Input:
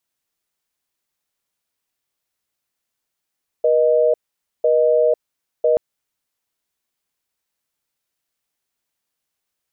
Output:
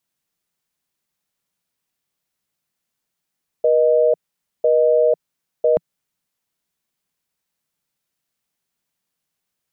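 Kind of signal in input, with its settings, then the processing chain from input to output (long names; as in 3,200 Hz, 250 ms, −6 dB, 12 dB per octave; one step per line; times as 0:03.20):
call progress tone busy tone, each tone −15 dBFS 2.13 s
parametric band 170 Hz +8.5 dB 0.81 octaves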